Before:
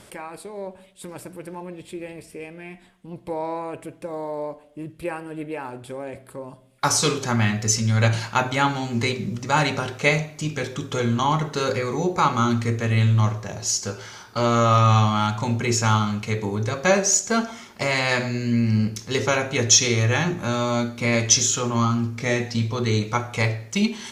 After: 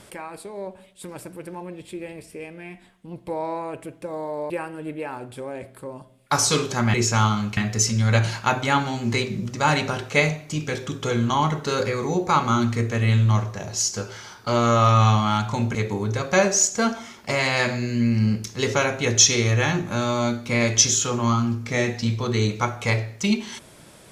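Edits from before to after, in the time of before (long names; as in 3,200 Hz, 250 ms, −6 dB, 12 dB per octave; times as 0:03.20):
0:04.50–0:05.02: remove
0:15.64–0:16.27: move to 0:07.46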